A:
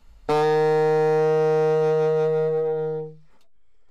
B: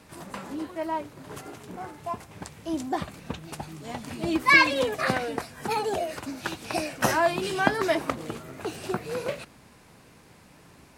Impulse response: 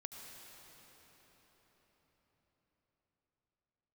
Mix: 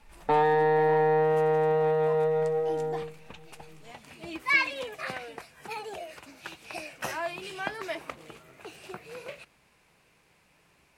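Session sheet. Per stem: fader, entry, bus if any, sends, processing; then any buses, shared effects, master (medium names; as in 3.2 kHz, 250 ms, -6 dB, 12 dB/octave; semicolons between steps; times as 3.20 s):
-5.5 dB, 0.00 s, send -18.5 dB, steep low-pass 3.8 kHz; small resonant body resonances 860/1800 Hz, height 15 dB
-10.5 dB, 0.00 s, no send, fifteen-band graphic EQ 100 Hz -8 dB, 250 Hz -8 dB, 2.5 kHz +7 dB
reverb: on, RT60 5.3 s, pre-delay 68 ms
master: none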